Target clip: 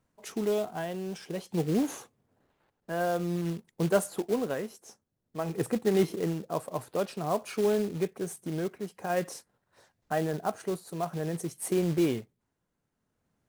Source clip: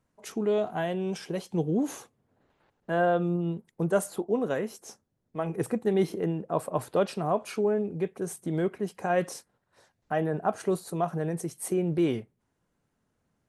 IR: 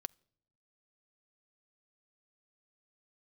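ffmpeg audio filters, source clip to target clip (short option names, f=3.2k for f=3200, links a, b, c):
-af "acrusher=bits=4:mode=log:mix=0:aa=0.000001,tremolo=f=0.51:d=0.46"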